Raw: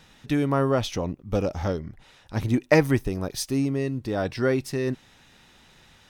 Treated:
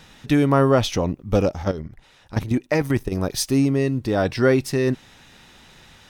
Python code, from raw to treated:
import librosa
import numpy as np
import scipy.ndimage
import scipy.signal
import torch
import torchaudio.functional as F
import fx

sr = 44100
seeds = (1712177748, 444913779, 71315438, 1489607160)

y = fx.level_steps(x, sr, step_db=12, at=(1.49, 3.12))
y = F.gain(torch.from_numpy(y), 6.0).numpy()